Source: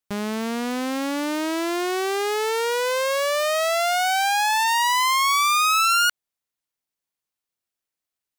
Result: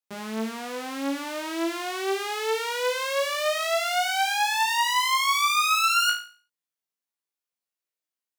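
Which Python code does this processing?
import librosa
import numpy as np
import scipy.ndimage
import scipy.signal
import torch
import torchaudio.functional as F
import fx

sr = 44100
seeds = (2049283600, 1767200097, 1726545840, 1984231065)

y = fx.dynamic_eq(x, sr, hz=3000.0, q=1.1, threshold_db=-31.0, ratio=4.0, max_db=4)
y = scipy.signal.sosfilt(scipy.signal.butter(2, 200.0, 'highpass', fs=sr, output='sos'), y)
y = fx.room_flutter(y, sr, wall_m=3.1, rt60_s=0.4)
y = y * 10.0 ** (-8.0 / 20.0)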